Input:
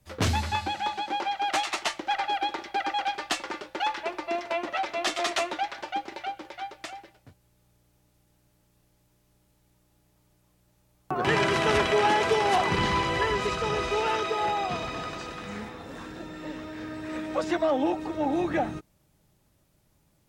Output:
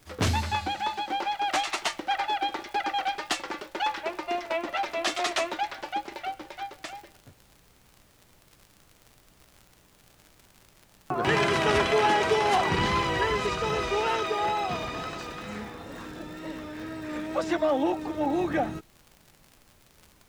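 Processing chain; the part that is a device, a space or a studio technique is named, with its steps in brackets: vinyl LP (wow and flutter; crackle 77/s -39 dBFS; pink noise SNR 31 dB)

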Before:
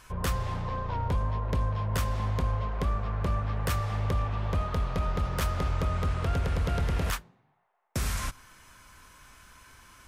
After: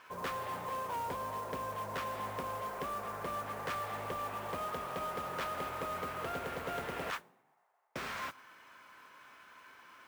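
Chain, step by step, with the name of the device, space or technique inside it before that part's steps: carbon microphone (BPF 340–2900 Hz; soft clip -31.5 dBFS, distortion -14 dB; modulation noise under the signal 17 dB)

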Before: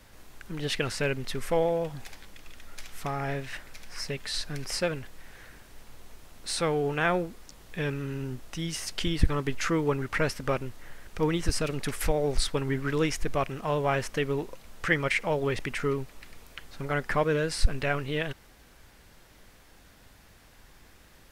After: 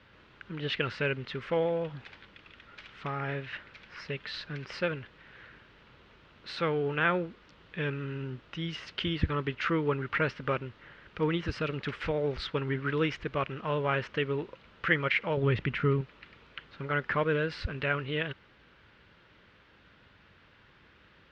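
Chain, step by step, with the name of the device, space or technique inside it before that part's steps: 15.37–16.01 tone controls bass +10 dB, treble -2 dB; guitar cabinet (speaker cabinet 80–3700 Hz, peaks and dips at 260 Hz -3 dB, 730 Hz -8 dB, 1400 Hz +4 dB, 2900 Hz +3 dB); gain -1.5 dB

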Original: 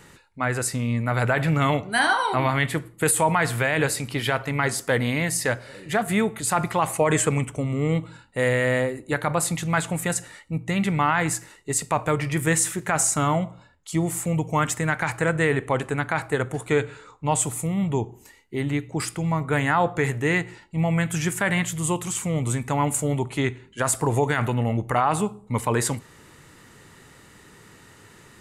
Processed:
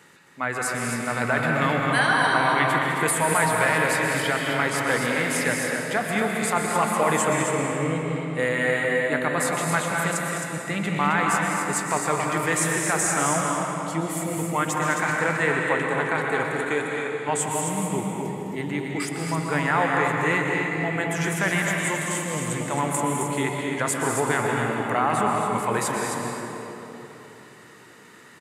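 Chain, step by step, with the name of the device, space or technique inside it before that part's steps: stadium PA (HPF 170 Hz 12 dB/oct; bell 1700 Hz +3.5 dB 1.7 oct; loudspeakers at several distances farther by 71 m -10 dB, 91 m -6 dB; reverb RT60 3.5 s, pre-delay 0.113 s, DRR 1 dB); 16.65–17.29 low shelf 130 Hz -10.5 dB; gain -4 dB

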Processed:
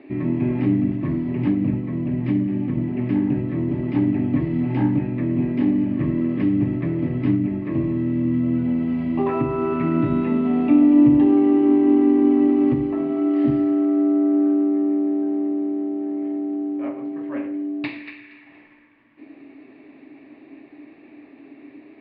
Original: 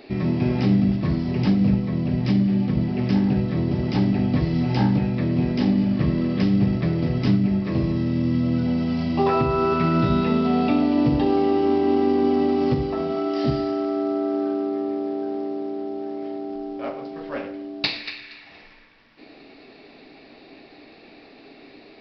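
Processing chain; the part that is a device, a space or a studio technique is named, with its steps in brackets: bass cabinet (speaker cabinet 72–2300 Hz, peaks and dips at 74 Hz -10 dB, 190 Hz -8 dB, 290 Hz +10 dB, 470 Hz -8 dB, 750 Hz -7 dB, 1400 Hz -8 dB)

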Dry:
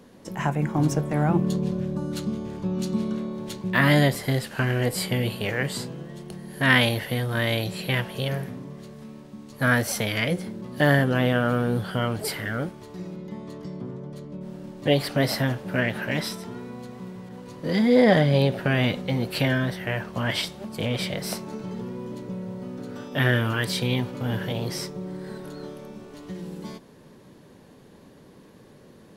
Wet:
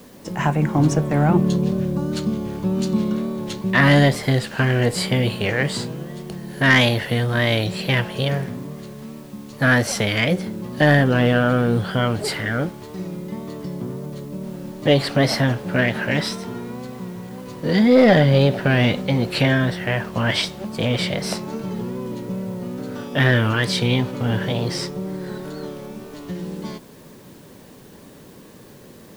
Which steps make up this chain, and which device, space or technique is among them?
compact cassette (soft clip -10 dBFS, distortion -20 dB; LPF 8000 Hz 12 dB/oct; wow and flutter; white noise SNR 33 dB); gain +6 dB

